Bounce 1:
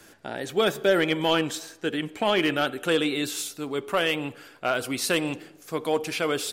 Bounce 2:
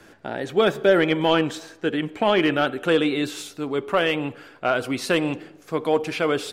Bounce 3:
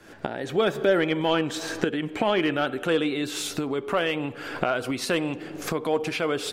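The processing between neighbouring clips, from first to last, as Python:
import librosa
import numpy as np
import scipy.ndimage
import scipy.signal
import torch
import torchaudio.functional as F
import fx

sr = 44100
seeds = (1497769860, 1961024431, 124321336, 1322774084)

y1 = fx.lowpass(x, sr, hz=2300.0, slope=6)
y1 = y1 * 10.0 ** (4.5 / 20.0)
y2 = fx.recorder_agc(y1, sr, target_db=-16.5, rise_db_per_s=67.0, max_gain_db=30)
y2 = y2 * 10.0 ** (-4.0 / 20.0)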